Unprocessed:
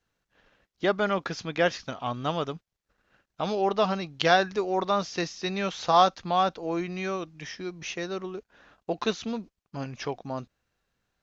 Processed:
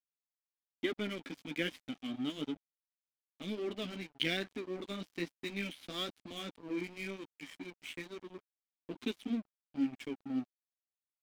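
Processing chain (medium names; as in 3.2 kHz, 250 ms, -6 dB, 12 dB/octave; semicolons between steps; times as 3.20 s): flange 1.1 Hz, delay 7.2 ms, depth 9.4 ms, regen -21%; vowel filter i; crossover distortion -57.5 dBFS; trim +10.5 dB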